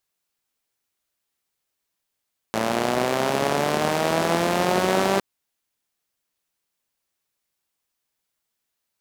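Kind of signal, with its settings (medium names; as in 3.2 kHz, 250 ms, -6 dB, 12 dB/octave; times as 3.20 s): four-cylinder engine model, changing speed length 2.66 s, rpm 3300, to 5900, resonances 230/380/590 Hz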